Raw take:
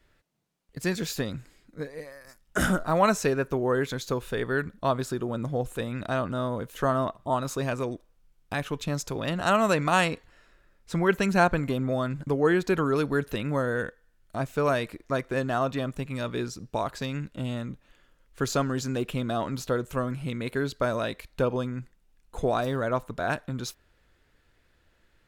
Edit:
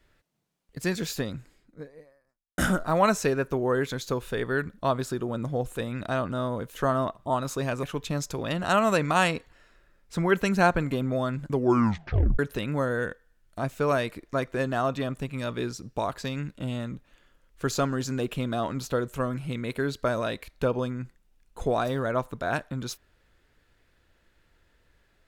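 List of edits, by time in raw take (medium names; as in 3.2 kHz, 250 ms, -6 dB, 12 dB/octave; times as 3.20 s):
1.05–2.58 s: studio fade out
7.83–8.60 s: delete
12.30 s: tape stop 0.86 s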